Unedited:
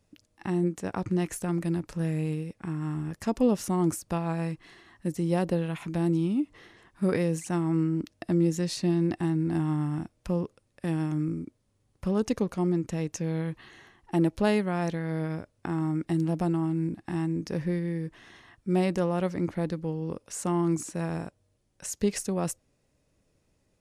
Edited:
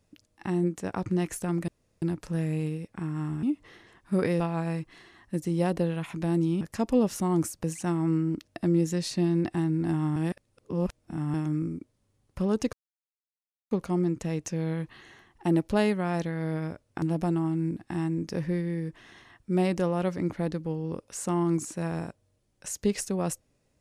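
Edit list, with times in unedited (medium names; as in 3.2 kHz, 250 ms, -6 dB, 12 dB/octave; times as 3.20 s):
1.68 s: insert room tone 0.34 s
3.09–4.12 s: swap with 6.33–7.30 s
9.82–11.00 s: reverse
12.39 s: insert silence 0.98 s
15.70–16.20 s: delete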